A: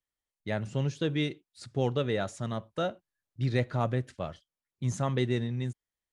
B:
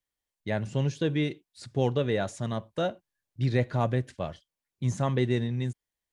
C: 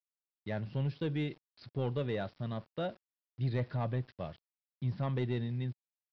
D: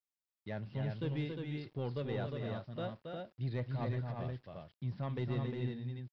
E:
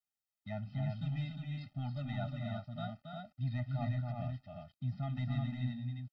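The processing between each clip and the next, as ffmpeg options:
-filter_complex "[0:a]acrossover=split=2400[s0][s1];[s1]alimiter=level_in=4.47:limit=0.0631:level=0:latency=1:release=24,volume=0.224[s2];[s0][s2]amix=inputs=2:normalize=0,bandreject=f=1300:w=9.5,volume=1.33"
-af "aresample=11025,aeval=exprs='val(0)*gte(abs(val(0)),0.00355)':c=same,aresample=44100,equalizer=f=140:t=o:w=1.2:g=3,asoftclip=type=tanh:threshold=0.15,volume=0.422"
-af "aecho=1:1:274|282|355:0.501|0.15|0.596,volume=0.596"
-af "afftfilt=real='re*eq(mod(floor(b*sr/1024/300),2),0)':imag='im*eq(mod(floor(b*sr/1024/300),2),0)':win_size=1024:overlap=0.75,volume=1.19"

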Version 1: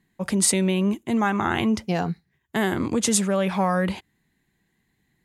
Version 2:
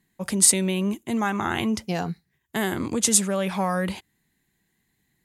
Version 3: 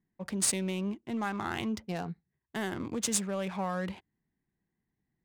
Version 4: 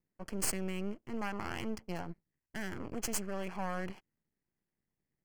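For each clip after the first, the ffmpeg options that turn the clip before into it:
-af "aemphasis=mode=production:type=cd,volume=0.75"
-af "adynamicsmooth=sensitivity=6.5:basefreq=1400,volume=0.376"
-af "aeval=exprs='max(val(0),0)':c=same,asuperstop=centerf=3700:order=4:qfactor=4.1,volume=0.841"

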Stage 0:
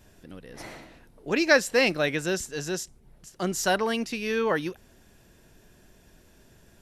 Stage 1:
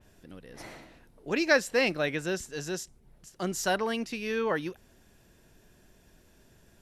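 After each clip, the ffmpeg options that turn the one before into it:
-af "adynamicequalizer=threshold=0.0126:dfrequency=3800:dqfactor=0.7:tfrequency=3800:tqfactor=0.7:attack=5:release=100:ratio=0.375:range=2:mode=cutabove:tftype=highshelf,volume=0.668"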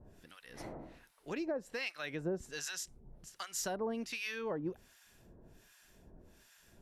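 -filter_complex "[0:a]acompressor=threshold=0.02:ratio=8,acrossover=split=1000[s0][s1];[s0]aeval=exprs='val(0)*(1-1/2+1/2*cos(2*PI*1.3*n/s))':c=same[s2];[s1]aeval=exprs='val(0)*(1-1/2-1/2*cos(2*PI*1.3*n/s))':c=same[s3];[s2][s3]amix=inputs=2:normalize=0,volume=1.5"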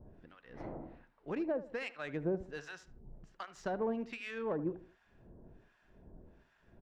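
-filter_complex "[0:a]adynamicsmooth=sensitivity=2:basefreq=1600,asplit=2[s0][s1];[s1]adelay=76,lowpass=f=2000:p=1,volume=0.188,asplit=2[s2][s3];[s3]adelay=76,lowpass=f=2000:p=1,volume=0.36,asplit=2[s4][s5];[s5]adelay=76,lowpass=f=2000:p=1,volume=0.36[s6];[s0][s2][s4][s6]amix=inputs=4:normalize=0,volume=1.33"

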